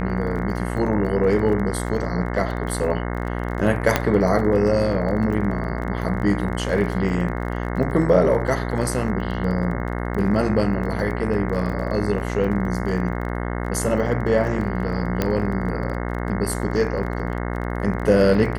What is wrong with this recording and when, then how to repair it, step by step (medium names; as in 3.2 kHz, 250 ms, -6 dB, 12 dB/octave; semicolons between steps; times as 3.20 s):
buzz 60 Hz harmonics 36 -26 dBFS
crackle 24 per s -30 dBFS
3.96 s: pop -2 dBFS
15.22 s: pop -7 dBFS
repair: de-click; de-hum 60 Hz, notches 36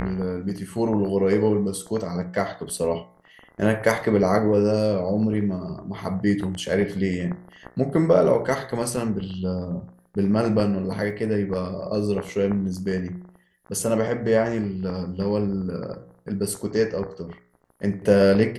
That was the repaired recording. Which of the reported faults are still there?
nothing left